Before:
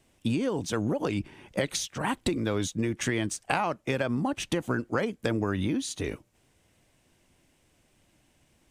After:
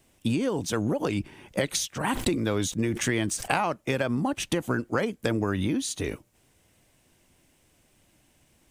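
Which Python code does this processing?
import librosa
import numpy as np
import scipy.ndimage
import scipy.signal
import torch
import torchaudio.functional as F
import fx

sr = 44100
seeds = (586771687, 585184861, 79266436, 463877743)

y = fx.high_shelf(x, sr, hz=11000.0, db=9.5)
y = fx.sustainer(y, sr, db_per_s=82.0, at=(2.05, 3.66))
y = F.gain(torch.from_numpy(y), 1.5).numpy()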